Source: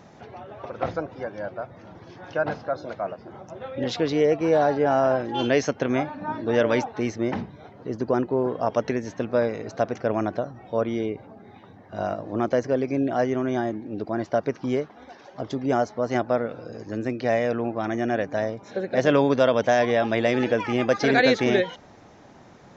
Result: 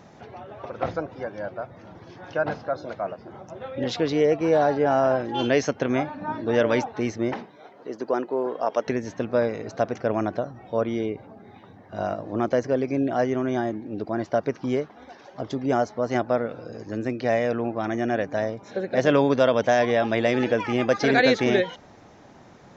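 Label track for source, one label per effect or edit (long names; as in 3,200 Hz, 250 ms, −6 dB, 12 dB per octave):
7.330000	8.870000	high-pass filter 350 Hz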